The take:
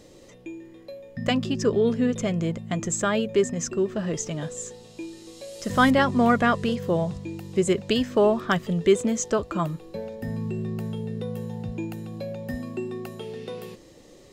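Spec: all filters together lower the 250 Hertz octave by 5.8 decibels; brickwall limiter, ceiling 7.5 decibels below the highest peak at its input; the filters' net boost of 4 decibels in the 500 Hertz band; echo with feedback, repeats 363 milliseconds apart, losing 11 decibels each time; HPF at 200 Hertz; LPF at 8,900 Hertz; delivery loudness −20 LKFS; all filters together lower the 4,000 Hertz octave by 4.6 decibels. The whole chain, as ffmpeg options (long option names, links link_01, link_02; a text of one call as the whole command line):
ffmpeg -i in.wav -af "highpass=200,lowpass=8900,equalizer=frequency=250:width_type=o:gain=-8,equalizer=frequency=500:width_type=o:gain=8,equalizer=frequency=4000:width_type=o:gain=-7,alimiter=limit=-13.5dB:level=0:latency=1,aecho=1:1:363|726|1089:0.282|0.0789|0.0221,volume=7dB" out.wav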